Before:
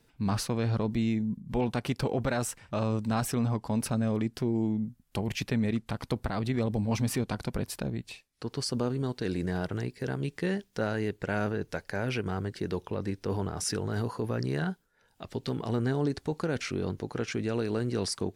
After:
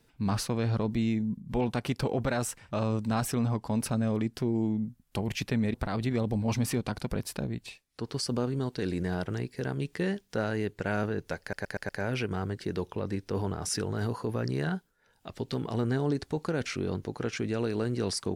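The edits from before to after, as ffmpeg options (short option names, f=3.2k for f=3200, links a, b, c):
-filter_complex "[0:a]asplit=6[a][b][c][d][e][f];[a]atrim=end=5.742[g];[b]atrim=start=6.168:end=11.962[h];[c]atrim=start=11.838:end=11.962[i];[d]atrim=start=11.838:end=11.962[j];[e]atrim=start=11.838:end=11.962[k];[f]atrim=start=11.838[l];[g][h]acrossfade=d=0.004:c1=hsin:c2=hsin[m];[m][i]acrossfade=d=0.004:c1=hsin:c2=hsin[n];[n][j]acrossfade=d=0.004:c1=hsin:c2=hsin[o];[o][k]acrossfade=d=0.004:c1=hsin:c2=hsin[p];[p][l]acrossfade=d=0.004:c1=hsin:c2=hsin"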